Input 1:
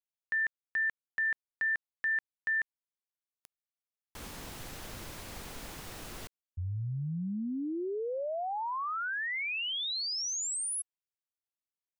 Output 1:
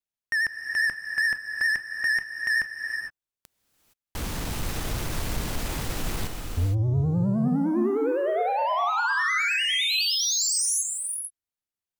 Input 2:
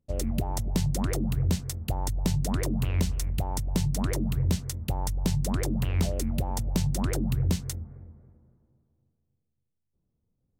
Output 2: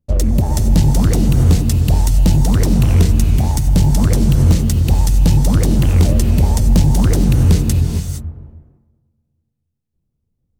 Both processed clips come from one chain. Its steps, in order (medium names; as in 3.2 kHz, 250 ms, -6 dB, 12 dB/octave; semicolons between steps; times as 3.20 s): bass shelf 200 Hz +8 dB; waveshaping leveller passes 2; vibrato 9.8 Hz 68 cents; gated-style reverb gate 490 ms rising, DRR 4.5 dB; trim +3.5 dB